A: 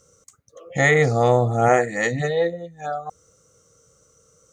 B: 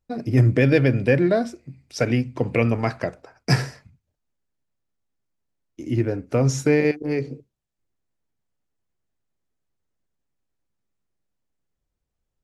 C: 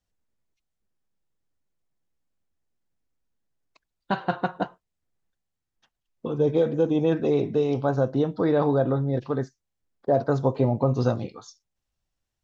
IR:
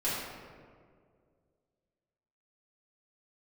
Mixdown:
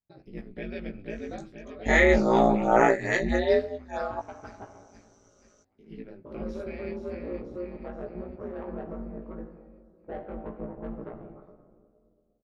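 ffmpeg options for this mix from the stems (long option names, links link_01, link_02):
-filter_complex "[0:a]lowpass=frequency=5900:width=0.5412,lowpass=frequency=5900:width=1.3066,adelay=1100,volume=3dB[link_01];[1:a]highshelf=frequency=5100:width_type=q:width=3:gain=-9,volume=-14.5dB,asplit=2[link_02][link_03];[link_03]volume=-8dB[link_04];[2:a]lowpass=frequency=1800:width=0.5412,lowpass=frequency=1800:width=1.3066,asoftclip=type=tanh:threshold=-17.5dB,volume=-10dB,asplit=2[link_05][link_06];[link_06]volume=-11.5dB[link_07];[3:a]atrim=start_sample=2205[link_08];[link_07][link_08]afir=irnorm=-1:irlink=0[link_09];[link_04]aecho=0:1:479|958|1437|1916|2395|2874|3353:1|0.51|0.26|0.133|0.0677|0.0345|0.0176[link_10];[link_01][link_02][link_05][link_09][link_10]amix=inputs=5:normalize=0,aeval=exprs='val(0)*sin(2*PI*90*n/s)':channel_layout=same,flanger=delay=16.5:depth=2:speed=0.25"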